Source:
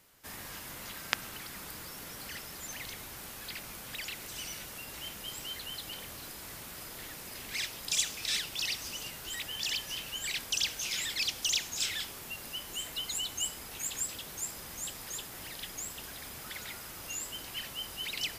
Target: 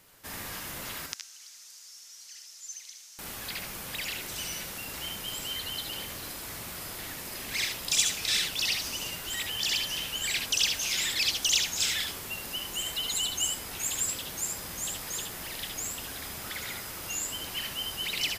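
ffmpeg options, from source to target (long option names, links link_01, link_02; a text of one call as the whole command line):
ffmpeg -i in.wav -filter_complex "[0:a]asettb=1/sr,asplit=3[link_01][link_02][link_03];[link_01]atrim=end=1.064[link_04];[link_02]atrim=start=1.06:end=3.19,asetpts=PTS-STARTPTS,afade=type=in:duration=0.004:curve=qsin,afade=type=out:start_time=2.126:duration=0.004:curve=qsin,bandpass=frequency=6100:width_type=q:width=3.2:csg=0[link_05];[link_03]atrim=start=3.186[link_06];[link_04][link_05]acrossfade=duration=0.004:curve1=hsin:curve2=qsin[link_07];[link_07][link_06]acrossfade=duration=0.004:curve1=qsin:curve2=hsin,aecho=1:1:66|77:0.422|0.447,volume=4dB" out.wav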